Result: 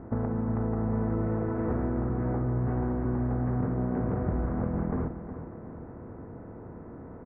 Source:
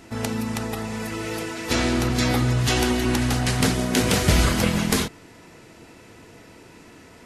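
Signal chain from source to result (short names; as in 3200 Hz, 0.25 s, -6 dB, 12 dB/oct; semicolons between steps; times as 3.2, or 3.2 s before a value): per-bin compression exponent 0.6; gate -25 dBFS, range -11 dB; Bessel low-pass 840 Hz, order 8; compressor 6:1, threshold -29 dBFS, peak gain reduction 15.5 dB; feedback echo 0.364 s, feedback 45%, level -11 dB; gain +2 dB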